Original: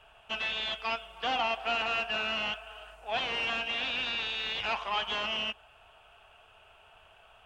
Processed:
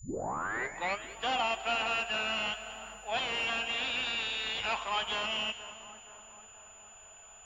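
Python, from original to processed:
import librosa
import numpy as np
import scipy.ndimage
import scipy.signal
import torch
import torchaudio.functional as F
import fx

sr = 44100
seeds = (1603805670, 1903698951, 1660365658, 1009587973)

y = fx.tape_start_head(x, sr, length_s=1.07)
y = y + 10.0 ** (-54.0 / 20.0) * np.sin(2.0 * np.pi * 7000.0 * np.arange(len(y)) / sr)
y = fx.echo_split(y, sr, split_hz=1700.0, low_ms=475, high_ms=200, feedback_pct=52, wet_db=-14.0)
y = y * 10.0 ** (-1.0 / 20.0)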